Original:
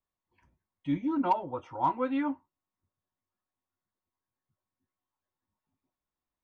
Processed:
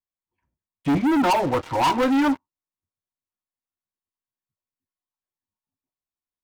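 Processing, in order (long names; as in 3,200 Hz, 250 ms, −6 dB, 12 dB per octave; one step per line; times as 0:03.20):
high-shelf EQ 2,700 Hz −3.5 dB, from 0:02.18 +3.5 dB
leveller curve on the samples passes 5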